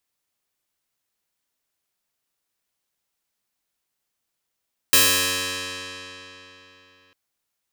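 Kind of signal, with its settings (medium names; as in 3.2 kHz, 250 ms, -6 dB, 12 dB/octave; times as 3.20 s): plucked string F#2, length 2.20 s, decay 3.58 s, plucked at 0.13, bright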